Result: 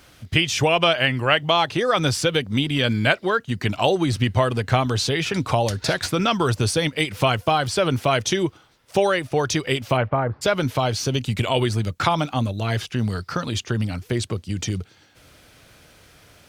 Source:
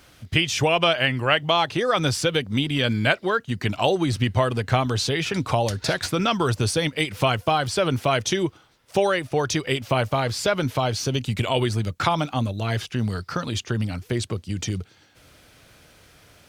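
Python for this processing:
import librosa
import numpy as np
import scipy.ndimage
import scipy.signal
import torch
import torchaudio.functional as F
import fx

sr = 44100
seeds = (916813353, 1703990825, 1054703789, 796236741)

y = fx.lowpass(x, sr, hz=fx.line((9.96, 2900.0), (10.41, 1100.0)), slope=24, at=(9.96, 10.41), fade=0.02)
y = y * 10.0 ** (1.5 / 20.0)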